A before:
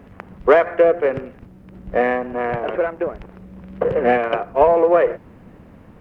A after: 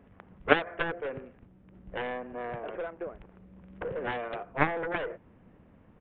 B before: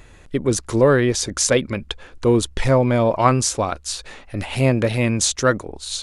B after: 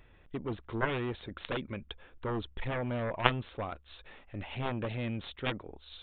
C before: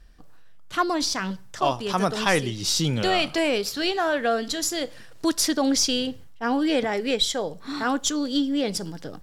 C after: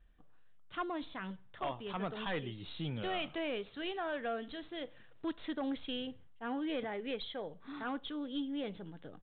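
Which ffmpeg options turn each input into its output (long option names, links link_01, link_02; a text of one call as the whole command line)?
ffmpeg -i in.wav -af "aeval=exprs='0.891*(cos(1*acos(clip(val(0)/0.891,-1,1)))-cos(1*PI/2))+0.0501*(cos(2*acos(clip(val(0)/0.891,-1,1)))-cos(2*PI/2))+0.398*(cos(3*acos(clip(val(0)/0.891,-1,1)))-cos(3*PI/2))':channel_layout=same,aresample=8000,aresample=44100,volume=-4dB" out.wav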